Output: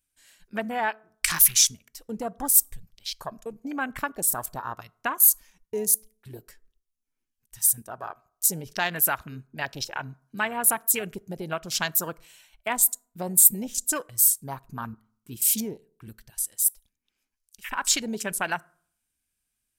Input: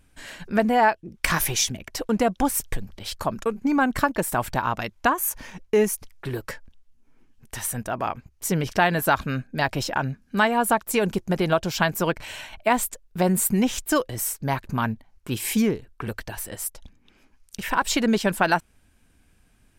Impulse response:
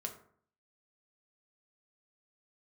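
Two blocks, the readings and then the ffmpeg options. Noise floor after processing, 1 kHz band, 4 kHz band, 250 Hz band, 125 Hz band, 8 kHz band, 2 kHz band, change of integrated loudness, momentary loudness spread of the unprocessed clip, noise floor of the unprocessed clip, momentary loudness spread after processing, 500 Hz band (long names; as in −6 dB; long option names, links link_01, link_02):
−81 dBFS, −8.5 dB, −0.5 dB, −11.5 dB, −12.0 dB, +7.0 dB, −5.5 dB, +1.5 dB, 12 LU, −61 dBFS, 20 LU, −10.5 dB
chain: -filter_complex "[0:a]crystalizer=i=8:c=0,afwtdn=0.0891,asplit=2[link_01][link_02];[1:a]atrim=start_sample=2205[link_03];[link_02][link_03]afir=irnorm=-1:irlink=0,volume=-15dB[link_04];[link_01][link_04]amix=inputs=2:normalize=0,volume=-13dB"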